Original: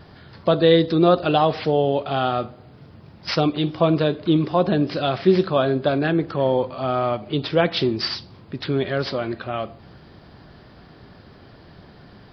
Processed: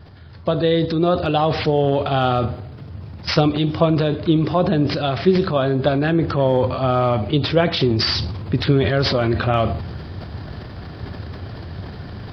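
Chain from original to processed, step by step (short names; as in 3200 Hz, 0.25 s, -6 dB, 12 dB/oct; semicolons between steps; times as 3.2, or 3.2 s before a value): bell 87 Hz +13 dB 0.93 oct; transient shaper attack +3 dB, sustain +8 dB; vocal rider 0.5 s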